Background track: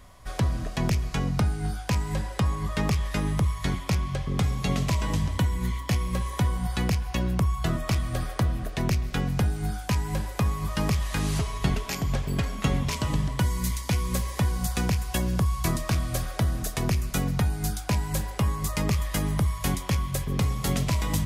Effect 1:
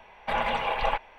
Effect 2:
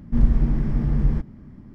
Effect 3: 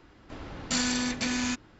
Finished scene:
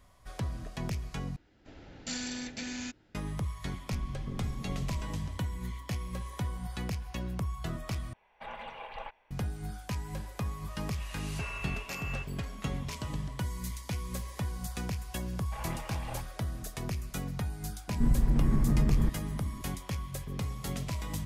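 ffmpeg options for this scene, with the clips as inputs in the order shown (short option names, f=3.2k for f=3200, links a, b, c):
-filter_complex "[3:a]asplit=2[a][b];[2:a]asplit=2[c][d];[1:a]asplit=2[e][f];[0:a]volume=-10dB[g];[a]equalizer=f=1.1k:t=o:w=0.36:g=-11.5[h];[c]acompressor=threshold=-20dB:ratio=6:attack=3.2:release=140:knee=1:detection=peak[i];[b]lowpass=f=2.5k:t=q:w=0.5098,lowpass=f=2.5k:t=q:w=0.6013,lowpass=f=2.5k:t=q:w=0.9,lowpass=f=2.5k:t=q:w=2.563,afreqshift=-2900[j];[d]acompressor=threshold=-20dB:ratio=6:attack=3.2:release=140:knee=1:detection=peak[k];[g]asplit=3[l][m][n];[l]atrim=end=1.364[o];[h]atrim=end=1.79,asetpts=PTS-STARTPTS,volume=-9dB[p];[m]atrim=start=3.146:end=8.134[q];[e]atrim=end=1.18,asetpts=PTS-STARTPTS,volume=-16dB[r];[n]atrim=start=9.306[s];[i]atrim=end=1.74,asetpts=PTS-STARTPTS,volume=-15.5dB,afade=t=in:d=0.004:c=hsin,afade=t=out:st=1.736:d=0.004:c=hsin,adelay=3800[t];[j]atrim=end=1.79,asetpts=PTS-STARTPTS,volume=-11.5dB,afade=t=in:d=0.004:c=hsin,afade=t=out:st=1.786:d=0.004:c=hsin,adelay=10680[u];[f]atrim=end=1.18,asetpts=PTS-STARTPTS,volume=-17dB,afade=t=in:d=0.004:c=hsin,afade=t=out:st=1.176:d=0.004:c=hsin,adelay=672084S[v];[k]atrim=end=1.74,asetpts=PTS-STARTPTS,afade=t=in:d=0.004:c=hsin,afade=t=out:st=1.736:d=0.004:c=hsin,adelay=17880[w];[o][p]acrossfade=d=0.004:c1=hsin:c2=hsin[x];[x][q]acrossfade=d=0.004:c1=hsin:c2=hsin[y];[y][r]acrossfade=d=0.004:c1=hsin:c2=hsin[z];[z][s]acrossfade=d=0.004:c1=hsin:c2=hsin[aa];[aa][t][u][v][w]amix=inputs=5:normalize=0"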